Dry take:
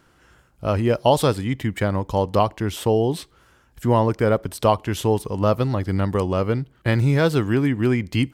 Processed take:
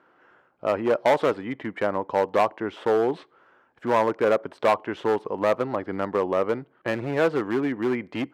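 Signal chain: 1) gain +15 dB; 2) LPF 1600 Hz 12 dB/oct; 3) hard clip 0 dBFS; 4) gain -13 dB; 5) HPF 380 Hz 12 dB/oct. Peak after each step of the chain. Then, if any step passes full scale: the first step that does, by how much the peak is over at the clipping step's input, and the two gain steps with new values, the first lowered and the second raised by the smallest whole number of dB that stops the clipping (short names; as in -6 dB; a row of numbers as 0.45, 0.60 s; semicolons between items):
+11.0, +10.0, 0.0, -13.0, -7.0 dBFS; step 1, 10.0 dB; step 1 +5 dB, step 4 -3 dB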